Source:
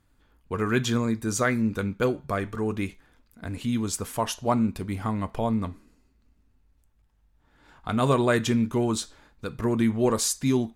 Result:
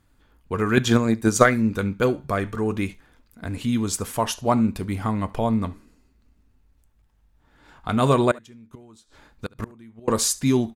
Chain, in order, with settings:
0:00.77–0:01.57: transient designer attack +12 dB, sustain −4 dB
0:08.31–0:10.08: gate with flip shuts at −20 dBFS, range −27 dB
single-tap delay 71 ms −23.5 dB
level +3.5 dB

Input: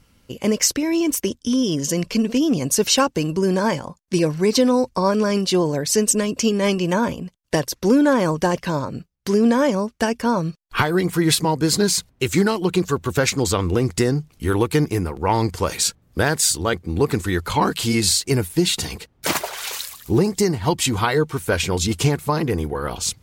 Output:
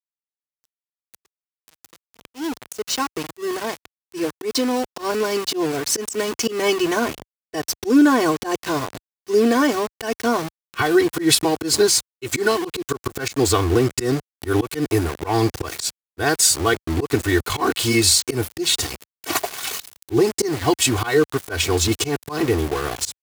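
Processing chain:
fade in at the beginning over 7.61 s
comb filter 2.7 ms, depth 95%
centre clipping without the shift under −24.5 dBFS
volume swells 121 ms
high-pass filter 60 Hz 12 dB per octave

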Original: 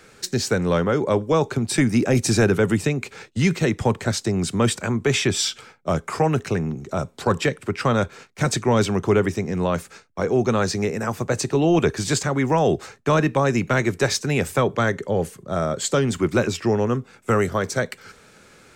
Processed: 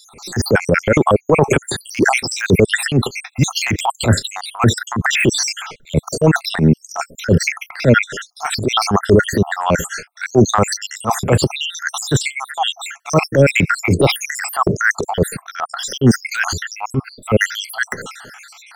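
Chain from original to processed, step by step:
time-frequency cells dropped at random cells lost 75%
de-essing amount 95%
transient designer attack −12 dB, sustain +5 dB
boost into a limiter +18 dB
level −1 dB

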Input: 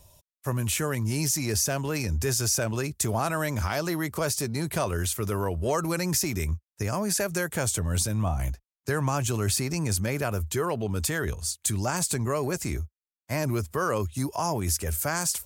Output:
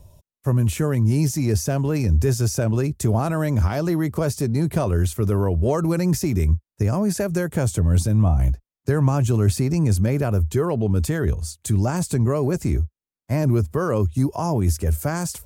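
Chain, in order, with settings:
tilt shelving filter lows +7.5 dB, about 700 Hz
level +3 dB

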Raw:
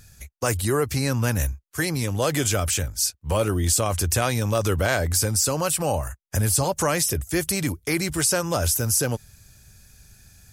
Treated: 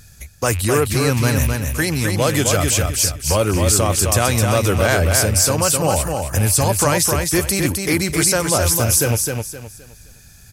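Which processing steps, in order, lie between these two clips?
loose part that buzzes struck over −24 dBFS, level −27 dBFS
on a send: repeating echo 260 ms, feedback 30%, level −4.5 dB
on the sum: level +5 dB

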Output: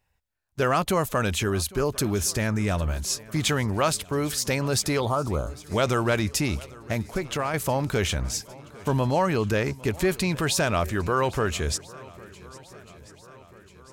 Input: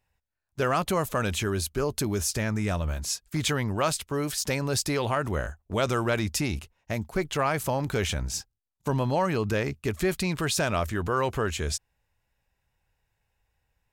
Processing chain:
0:05.00–0:05.59: elliptic band-stop filter 1,300–3,400 Hz
0:07.02–0:07.54: downward compressor 2.5 to 1, threshold −28 dBFS, peak gain reduction 5.5 dB
on a send: feedback echo with a long and a short gap by turns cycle 1,340 ms, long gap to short 1.5 to 1, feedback 51%, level −21.5 dB
on the sum: level +2.5 dB

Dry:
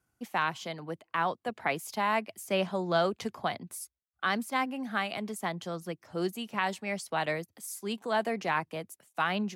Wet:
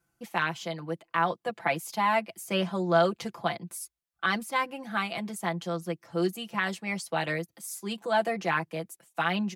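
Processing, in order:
comb filter 5.9 ms, depth 78%

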